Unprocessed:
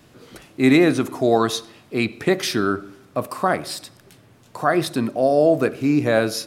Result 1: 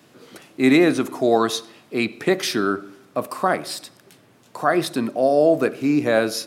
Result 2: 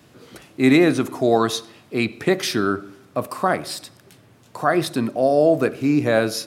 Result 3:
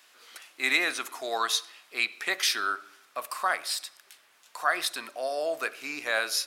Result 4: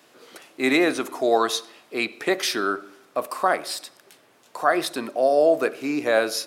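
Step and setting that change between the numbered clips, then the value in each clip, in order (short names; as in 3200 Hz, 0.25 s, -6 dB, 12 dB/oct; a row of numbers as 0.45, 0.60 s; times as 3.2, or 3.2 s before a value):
HPF, cutoff: 170, 63, 1300, 430 Hz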